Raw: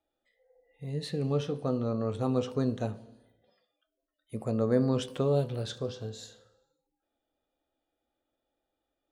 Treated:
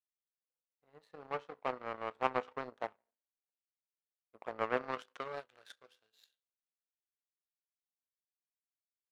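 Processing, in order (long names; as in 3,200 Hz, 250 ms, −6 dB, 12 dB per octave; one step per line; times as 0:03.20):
band-pass filter sweep 970 Hz → 6,200 Hz, 0:04.53–0:07.91
power curve on the samples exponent 2
low-shelf EQ 240 Hz −12 dB
level +14 dB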